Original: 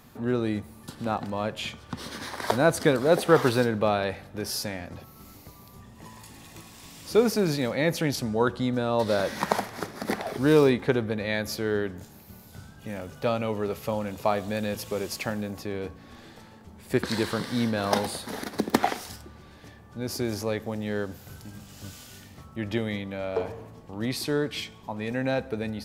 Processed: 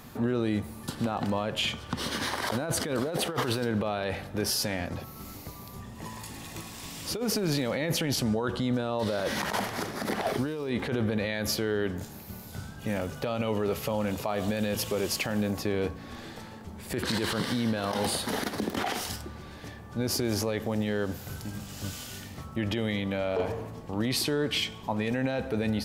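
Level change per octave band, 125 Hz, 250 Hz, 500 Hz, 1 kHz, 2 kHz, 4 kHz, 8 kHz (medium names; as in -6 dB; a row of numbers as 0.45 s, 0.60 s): -0.5 dB, -1.5 dB, -4.5 dB, -3.5 dB, -2.0 dB, +3.0 dB, +3.0 dB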